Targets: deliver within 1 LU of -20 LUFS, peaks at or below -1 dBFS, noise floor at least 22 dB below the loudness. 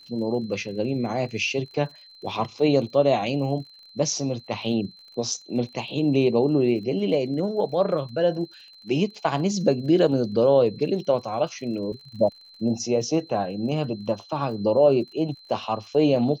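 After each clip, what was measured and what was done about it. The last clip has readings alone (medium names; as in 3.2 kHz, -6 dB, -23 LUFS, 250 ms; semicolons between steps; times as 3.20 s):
tick rate 41 per s; steady tone 4.1 kHz; tone level -47 dBFS; loudness -24.5 LUFS; peak level -6.0 dBFS; loudness target -20.0 LUFS
-> de-click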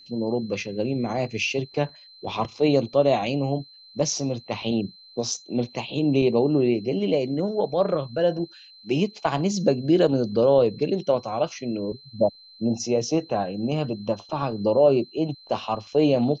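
tick rate 0 per s; steady tone 4.1 kHz; tone level -47 dBFS
-> band-stop 4.1 kHz, Q 30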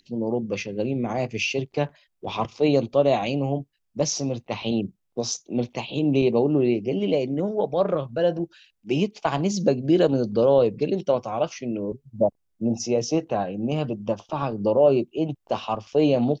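steady tone not found; loudness -24.5 LUFS; peak level -6.0 dBFS; loudness target -20.0 LUFS
-> trim +4.5 dB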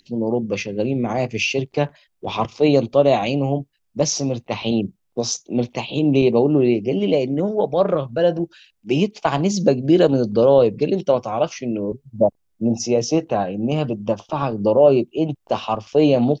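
loudness -20.0 LUFS; peak level -1.5 dBFS; noise floor -69 dBFS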